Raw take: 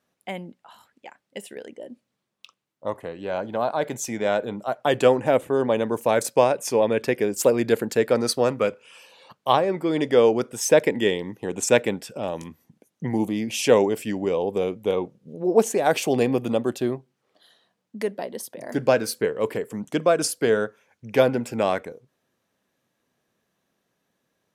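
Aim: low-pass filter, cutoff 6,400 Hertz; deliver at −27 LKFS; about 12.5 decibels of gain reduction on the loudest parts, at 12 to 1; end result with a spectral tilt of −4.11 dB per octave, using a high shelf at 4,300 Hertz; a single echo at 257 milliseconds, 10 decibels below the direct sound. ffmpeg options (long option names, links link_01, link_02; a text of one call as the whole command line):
ffmpeg -i in.wav -af "lowpass=6400,highshelf=frequency=4300:gain=4,acompressor=threshold=-24dB:ratio=12,aecho=1:1:257:0.316,volume=3.5dB" out.wav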